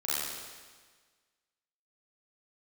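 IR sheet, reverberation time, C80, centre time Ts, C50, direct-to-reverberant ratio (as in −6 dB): 1.5 s, −1.0 dB, 126 ms, −4.0 dB, −11.0 dB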